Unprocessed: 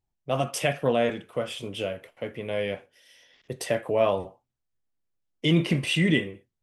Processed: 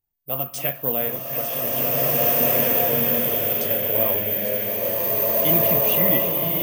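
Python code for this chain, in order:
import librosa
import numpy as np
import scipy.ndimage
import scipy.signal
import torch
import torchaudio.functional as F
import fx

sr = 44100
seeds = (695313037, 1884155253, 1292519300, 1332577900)

y = fx.reverse_delay(x, sr, ms=506, wet_db=-9)
y = (np.kron(y[::3], np.eye(3)[0]) * 3)[:len(y)]
y = fx.rev_bloom(y, sr, seeds[0], attack_ms=1980, drr_db=-8.0)
y = y * 10.0 ** (-5.0 / 20.0)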